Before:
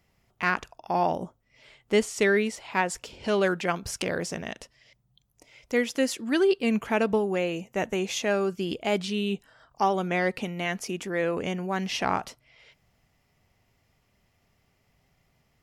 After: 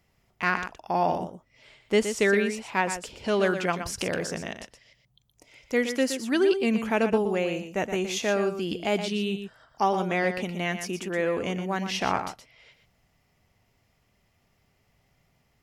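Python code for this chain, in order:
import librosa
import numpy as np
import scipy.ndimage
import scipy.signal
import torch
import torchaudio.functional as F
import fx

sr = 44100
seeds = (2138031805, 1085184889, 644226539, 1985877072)

y = x + 10.0 ** (-9.0 / 20.0) * np.pad(x, (int(120 * sr / 1000.0), 0))[:len(x)]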